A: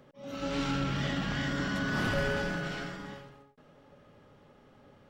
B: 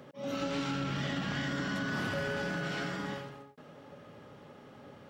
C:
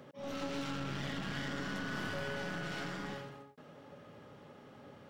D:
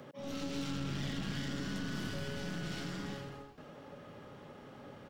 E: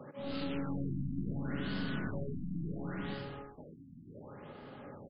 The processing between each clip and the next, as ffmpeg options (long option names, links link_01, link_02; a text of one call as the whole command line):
ffmpeg -i in.wav -af "highpass=99,acompressor=threshold=-38dB:ratio=6,volume=6.5dB" out.wav
ffmpeg -i in.wav -af "aeval=exprs='clip(val(0),-1,0.00944)':channel_layout=same,volume=-2.5dB" out.wav
ffmpeg -i in.wav -filter_complex "[0:a]acrossover=split=380|3000[link_01][link_02][link_03];[link_02]acompressor=threshold=-50dB:ratio=6[link_04];[link_01][link_04][link_03]amix=inputs=3:normalize=0,asplit=6[link_05][link_06][link_07][link_08][link_09][link_10];[link_06]adelay=166,afreqshift=-99,volume=-17dB[link_11];[link_07]adelay=332,afreqshift=-198,volume=-21.7dB[link_12];[link_08]adelay=498,afreqshift=-297,volume=-26.5dB[link_13];[link_09]adelay=664,afreqshift=-396,volume=-31.2dB[link_14];[link_10]adelay=830,afreqshift=-495,volume=-35.9dB[link_15];[link_05][link_11][link_12][link_13][link_14][link_15]amix=inputs=6:normalize=0,volume=3dB" out.wav
ffmpeg -i in.wav -filter_complex "[0:a]asplit=2[link_01][link_02];[link_02]adelay=48,volume=-13dB[link_03];[link_01][link_03]amix=inputs=2:normalize=0,afftfilt=real='re*lt(b*sr/1024,290*pow(5200/290,0.5+0.5*sin(2*PI*0.7*pts/sr)))':imag='im*lt(b*sr/1024,290*pow(5200/290,0.5+0.5*sin(2*PI*0.7*pts/sr)))':win_size=1024:overlap=0.75,volume=2dB" out.wav